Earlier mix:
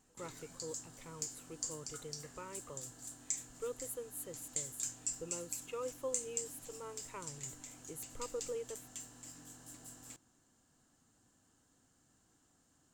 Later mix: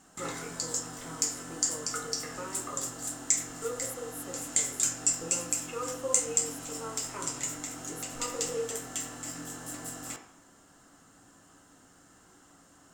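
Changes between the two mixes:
background +10.5 dB
reverb: on, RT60 0.60 s

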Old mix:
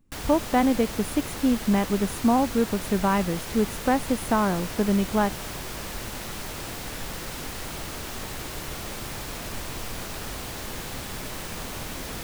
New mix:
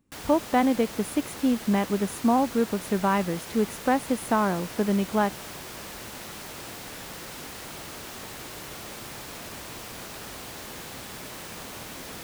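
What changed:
background −3.5 dB
master: add high-pass filter 150 Hz 6 dB per octave

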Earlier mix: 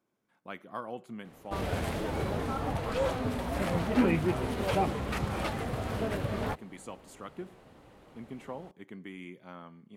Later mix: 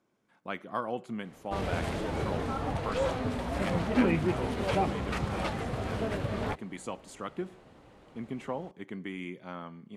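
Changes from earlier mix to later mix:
speech +5.5 dB
master: add low-pass filter 9,100 Hz 12 dB per octave

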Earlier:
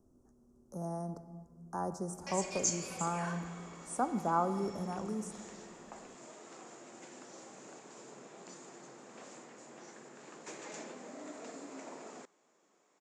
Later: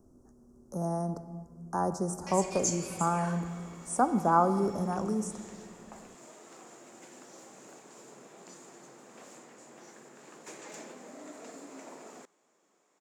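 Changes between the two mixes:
speech +7.0 dB
background: remove low-pass filter 7,800 Hz 24 dB per octave

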